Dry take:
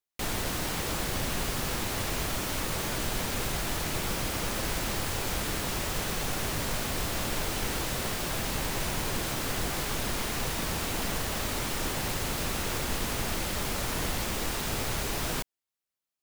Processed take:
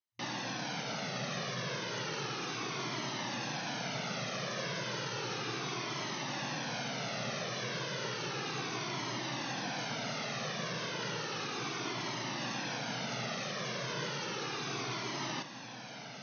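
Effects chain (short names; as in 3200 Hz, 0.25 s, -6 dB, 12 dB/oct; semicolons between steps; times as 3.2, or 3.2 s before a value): FFT band-pass 110–6400 Hz; on a send: diffused feedback echo 0.895 s, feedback 60%, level -10 dB; on the sum: cascading flanger falling 0.33 Hz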